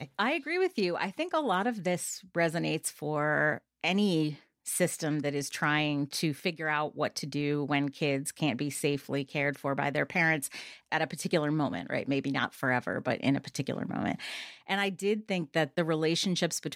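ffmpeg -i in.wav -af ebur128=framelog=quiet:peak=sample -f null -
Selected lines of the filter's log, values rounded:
Integrated loudness:
  I:         -30.5 LUFS
  Threshold: -40.6 LUFS
Loudness range:
  LRA:         1.6 LU
  Threshold: -50.7 LUFS
  LRA low:   -31.6 LUFS
  LRA high:  -30.0 LUFS
Sample peak:
  Peak:      -12.7 dBFS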